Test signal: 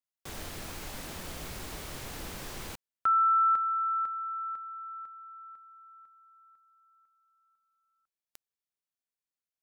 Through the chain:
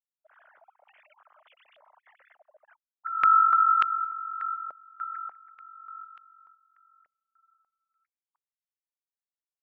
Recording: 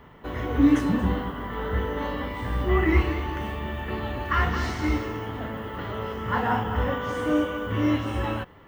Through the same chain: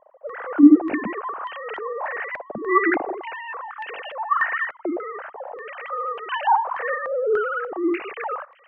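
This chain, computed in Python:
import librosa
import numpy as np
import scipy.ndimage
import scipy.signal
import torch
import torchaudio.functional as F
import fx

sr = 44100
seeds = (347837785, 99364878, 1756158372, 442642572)

y = fx.sine_speech(x, sr)
y = fx.filter_held_lowpass(y, sr, hz=3.4, low_hz=630.0, high_hz=2900.0)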